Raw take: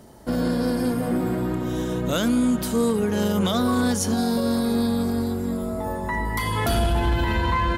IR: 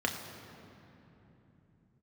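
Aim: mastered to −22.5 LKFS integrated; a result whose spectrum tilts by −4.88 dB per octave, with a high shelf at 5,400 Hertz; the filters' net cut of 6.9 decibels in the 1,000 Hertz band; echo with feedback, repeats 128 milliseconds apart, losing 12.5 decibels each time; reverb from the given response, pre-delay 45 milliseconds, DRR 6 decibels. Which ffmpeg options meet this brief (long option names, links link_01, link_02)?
-filter_complex "[0:a]equalizer=frequency=1000:width_type=o:gain=-9,highshelf=frequency=5400:gain=8,aecho=1:1:128|256|384:0.237|0.0569|0.0137,asplit=2[link_01][link_02];[1:a]atrim=start_sample=2205,adelay=45[link_03];[link_02][link_03]afir=irnorm=-1:irlink=0,volume=-14dB[link_04];[link_01][link_04]amix=inputs=2:normalize=0,volume=-0.5dB"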